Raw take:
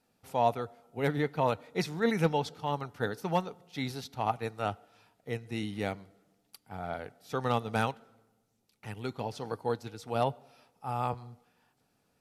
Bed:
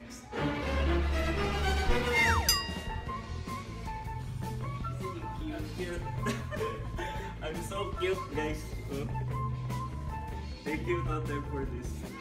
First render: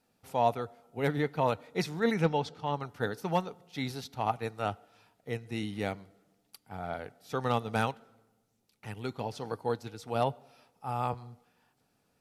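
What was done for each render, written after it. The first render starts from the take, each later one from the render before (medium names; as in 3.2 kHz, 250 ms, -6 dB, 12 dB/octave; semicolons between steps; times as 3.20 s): 2.14–2.81 s: distance through air 52 m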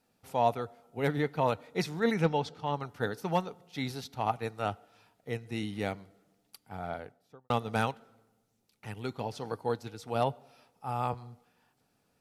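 6.83–7.50 s: studio fade out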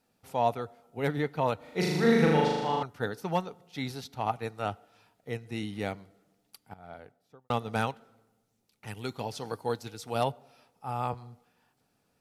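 1.57–2.83 s: flutter echo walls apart 6.7 m, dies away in 1.4 s; 6.74–7.69 s: fade in equal-power, from -17.5 dB; 8.87–10.32 s: treble shelf 3.2 kHz +7.5 dB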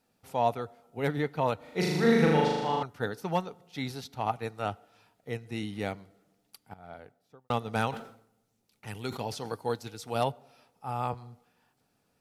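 7.71–9.52 s: decay stretcher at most 97 dB/s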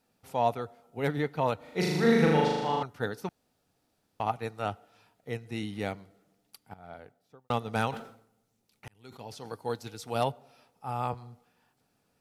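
3.29–4.20 s: room tone; 8.88–9.91 s: fade in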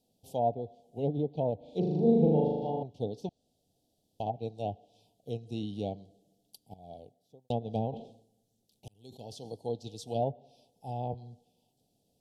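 low-pass that closes with the level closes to 1.1 kHz, closed at -24.5 dBFS; elliptic band-stop 720–3200 Hz, stop band 60 dB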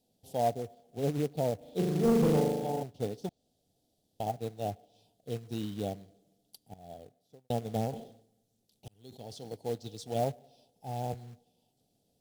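short-mantissa float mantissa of 2-bit; overload inside the chain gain 20 dB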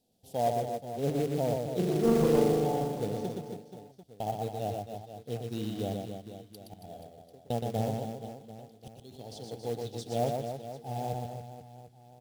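reverse bouncing-ball echo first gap 120 ms, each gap 1.3×, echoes 5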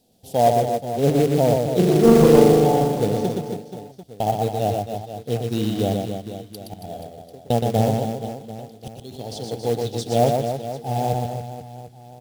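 trim +12 dB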